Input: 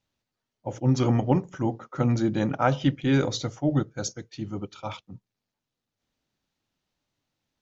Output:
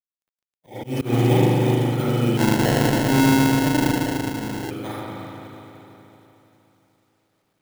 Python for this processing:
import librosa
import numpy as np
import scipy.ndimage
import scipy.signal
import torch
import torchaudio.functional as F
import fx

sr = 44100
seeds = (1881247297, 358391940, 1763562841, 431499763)

y = fx.bit_reversed(x, sr, seeds[0], block=16)
y = scipy.signal.sosfilt(scipy.signal.butter(2, 95.0, 'highpass', fs=sr, output='sos'), y)
y = fx.high_shelf(y, sr, hz=6400.0, db=-10.0)
y = fx.doubler(y, sr, ms=40.0, db=-5.5)
y = fx.echo_feedback(y, sr, ms=78, feedback_pct=35, wet_db=-15.5)
y = fx.rev_spring(y, sr, rt60_s=3.5, pass_ms=(37, 42), chirp_ms=40, drr_db=-8.5)
y = fx.auto_swell(y, sr, attack_ms=142.0)
y = fx.quant_companded(y, sr, bits=6)
y = fx.hpss(y, sr, part='percussive', gain_db=5)
y = fx.sample_hold(y, sr, seeds[1], rate_hz=1200.0, jitter_pct=0, at=(2.37, 4.71))
y = F.gain(torch.from_numpy(y), -5.0).numpy()